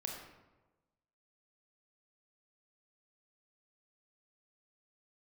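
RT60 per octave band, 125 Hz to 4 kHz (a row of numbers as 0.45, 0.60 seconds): 1.3, 1.2, 1.2, 1.1, 0.85, 0.65 seconds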